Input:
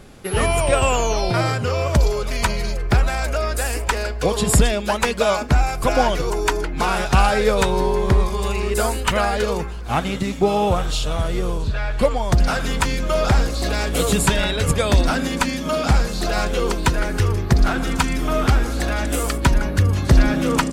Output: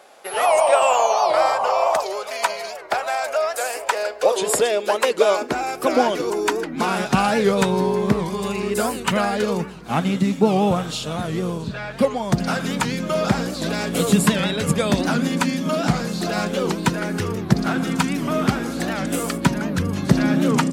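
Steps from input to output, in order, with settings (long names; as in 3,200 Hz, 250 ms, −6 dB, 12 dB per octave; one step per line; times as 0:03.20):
sound drawn into the spectrogram noise, 0:00.44–0:02.02, 510–1,200 Hz −25 dBFS
high-pass filter sweep 670 Hz → 180 Hz, 0:03.53–0:07.46
wow of a warped record 78 rpm, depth 160 cents
level −2 dB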